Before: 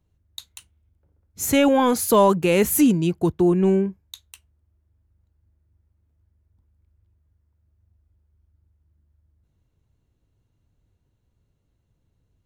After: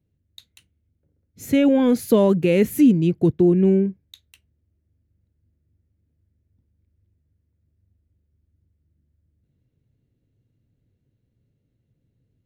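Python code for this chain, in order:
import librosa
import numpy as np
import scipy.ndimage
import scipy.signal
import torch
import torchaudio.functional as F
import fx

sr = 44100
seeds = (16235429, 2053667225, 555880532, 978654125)

y = fx.graphic_eq(x, sr, hz=(125, 250, 500, 1000, 2000, 4000, 8000), db=(11, 10, 8, -7, 7, 3, -4))
y = fx.rider(y, sr, range_db=10, speed_s=0.5)
y = y * librosa.db_to_amplitude(-8.5)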